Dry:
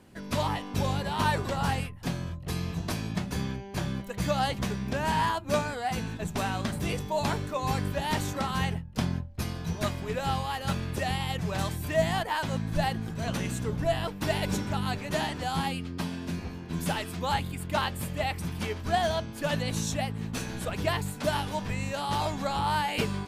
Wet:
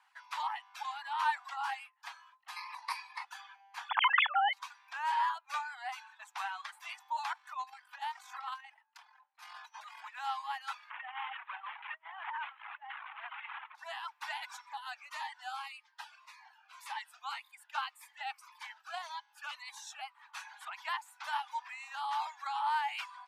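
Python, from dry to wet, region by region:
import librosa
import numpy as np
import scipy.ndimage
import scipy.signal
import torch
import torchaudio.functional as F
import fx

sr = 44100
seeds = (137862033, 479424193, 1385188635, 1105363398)

y = fx.chain(x, sr, fx.ripple_eq(per_octave=0.9, db=13),
    fx.env_flatten(amount_pct=70), at=(2.56, 3.25))
y = fx.chain(y, sr, fx.sine_speech(),
    fx.env_flatten(amount_pct=100), at=(3.89, 4.53))
y = fx.chain(y, sr, fx.low_shelf(hz=280.0, db=4.5),
    fx.over_compress(threshold_db=-33.0, ratio=-1.0), at=(7.33, 10.16))
y = fx.chain(y, sr, fx.delta_mod(bps=16000, step_db=-29.5),
    fx.highpass(hz=75.0, slope=12),
    fx.over_compress(threshold_db=-32.0, ratio=-0.5), at=(10.9, 13.75))
y = fx.chain(y, sr, fx.notch(hz=3300.0, q=29.0),
    fx.notch_cascade(direction='falling', hz=1.8), at=(14.61, 20.15))
y = scipy.signal.sosfilt(scipy.signal.butter(12, 820.0, 'highpass', fs=sr, output='sos'), y)
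y = fx.dereverb_blind(y, sr, rt60_s=1.0)
y = fx.lowpass(y, sr, hz=1500.0, slope=6)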